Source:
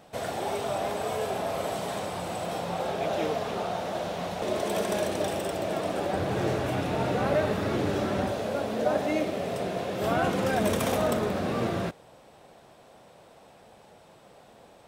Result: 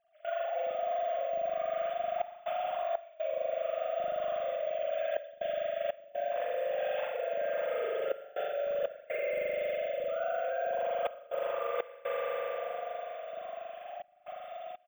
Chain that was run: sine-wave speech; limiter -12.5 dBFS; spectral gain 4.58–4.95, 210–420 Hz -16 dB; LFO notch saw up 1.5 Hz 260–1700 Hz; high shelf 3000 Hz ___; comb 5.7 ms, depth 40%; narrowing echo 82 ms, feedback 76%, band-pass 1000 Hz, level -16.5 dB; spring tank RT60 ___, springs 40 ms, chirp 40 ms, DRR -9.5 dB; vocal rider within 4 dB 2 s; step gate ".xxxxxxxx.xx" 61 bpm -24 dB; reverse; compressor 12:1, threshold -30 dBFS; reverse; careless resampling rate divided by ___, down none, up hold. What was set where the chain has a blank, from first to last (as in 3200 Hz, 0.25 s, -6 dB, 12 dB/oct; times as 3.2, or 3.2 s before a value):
+2.5 dB, 2.8 s, 2×